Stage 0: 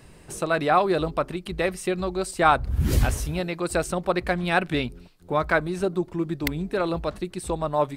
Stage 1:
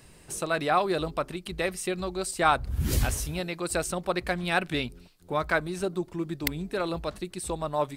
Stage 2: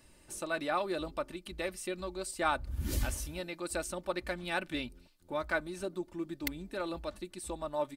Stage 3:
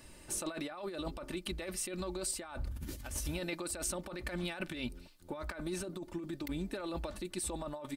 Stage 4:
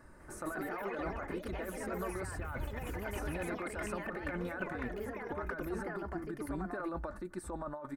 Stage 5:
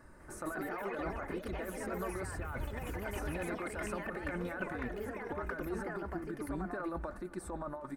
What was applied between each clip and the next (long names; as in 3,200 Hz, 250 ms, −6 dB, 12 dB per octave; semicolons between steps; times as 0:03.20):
high-shelf EQ 2,900 Hz +7.5 dB; level −5 dB
comb filter 3.4 ms, depth 51%; level −8.5 dB
compressor whose output falls as the input rises −41 dBFS, ratio −1; level +1.5 dB
high shelf with overshoot 2,100 Hz −12 dB, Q 3; delay with pitch and tempo change per echo 201 ms, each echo +3 semitones, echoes 3; level −1.5 dB
feedback echo with a long and a short gap by turns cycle 796 ms, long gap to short 1.5 to 1, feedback 58%, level −21.5 dB